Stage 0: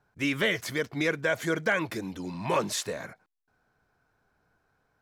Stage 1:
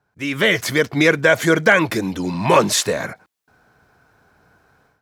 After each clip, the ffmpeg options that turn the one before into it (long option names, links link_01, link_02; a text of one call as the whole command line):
ffmpeg -i in.wav -af "highpass=50,dynaudnorm=framelen=270:gausssize=3:maxgain=14.5dB,volume=1dB" out.wav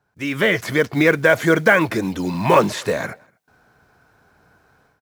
ffmpeg -i in.wav -filter_complex "[0:a]acrossover=split=2600[link_01][link_02];[link_02]acompressor=threshold=-32dB:ratio=4:attack=1:release=60[link_03];[link_01][link_03]amix=inputs=2:normalize=0,asplit=2[link_04][link_05];[link_05]adelay=239.1,volume=-30dB,highshelf=frequency=4000:gain=-5.38[link_06];[link_04][link_06]amix=inputs=2:normalize=0,acrusher=bits=7:mode=log:mix=0:aa=0.000001" out.wav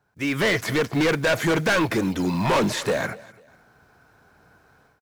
ffmpeg -i in.wav -af "volume=17.5dB,asoftclip=hard,volume=-17.5dB,aecho=1:1:248|496:0.0841|0.0278" out.wav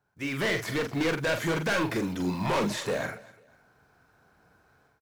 ffmpeg -i in.wav -filter_complex "[0:a]asplit=2[link_01][link_02];[link_02]adelay=44,volume=-6.5dB[link_03];[link_01][link_03]amix=inputs=2:normalize=0,volume=-7dB" out.wav